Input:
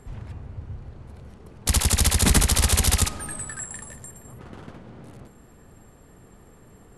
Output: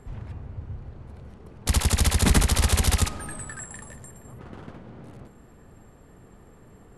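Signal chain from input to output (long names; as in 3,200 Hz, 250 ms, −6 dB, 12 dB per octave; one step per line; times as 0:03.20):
high-shelf EQ 3,900 Hz −6.5 dB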